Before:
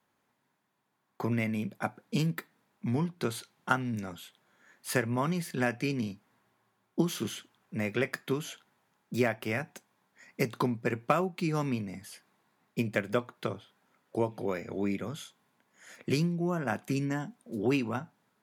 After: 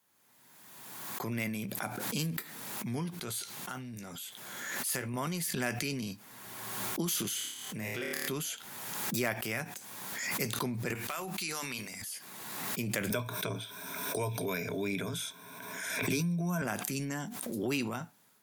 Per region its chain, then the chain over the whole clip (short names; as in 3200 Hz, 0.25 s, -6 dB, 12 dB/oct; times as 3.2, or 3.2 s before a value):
3.21–5.14 doubler 16 ms -12 dB + compressor 2:1, threshold -39 dBFS
7.34–8.29 flutter echo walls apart 4.7 m, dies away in 0.61 s + compressor 3:1, threshold -30 dBFS
10.95–12.02 tilt shelf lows -8.5 dB, about 630 Hz + notches 50/100/150/200/250/300/350 Hz + compressor 3:1, threshold -32 dBFS
13.1–16.62 ripple EQ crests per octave 1.6, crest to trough 14 dB + three-band squash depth 70%
whole clip: pre-emphasis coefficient 0.8; transient shaper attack -3 dB, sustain +7 dB; backwards sustainer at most 31 dB/s; gain +8 dB